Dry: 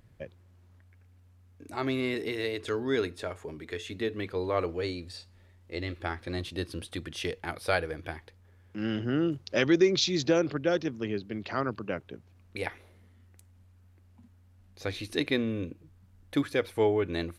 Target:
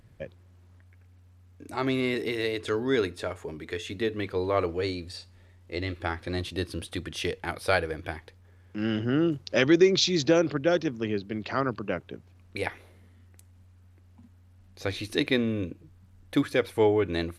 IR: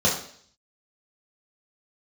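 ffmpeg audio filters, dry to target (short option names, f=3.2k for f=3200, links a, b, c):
-af "volume=3dB" -ar 32000 -c:a sbc -b:a 128k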